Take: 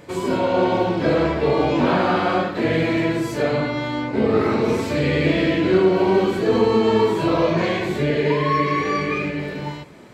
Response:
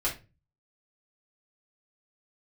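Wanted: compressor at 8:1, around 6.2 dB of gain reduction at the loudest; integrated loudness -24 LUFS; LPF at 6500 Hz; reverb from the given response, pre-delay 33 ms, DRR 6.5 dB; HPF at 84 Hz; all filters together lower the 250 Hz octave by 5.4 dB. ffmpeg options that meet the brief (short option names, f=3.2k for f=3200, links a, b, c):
-filter_complex "[0:a]highpass=84,lowpass=6.5k,equalizer=f=250:t=o:g=-8,acompressor=threshold=-22dB:ratio=8,asplit=2[a][b];[1:a]atrim=start_sample=2205,adelay=33[c];[b][c]afir=irnorm=-1:irlink=0,volume=-14dB[d];[a][d]amix=inputs=2:normalize=0,volume=1.5dB"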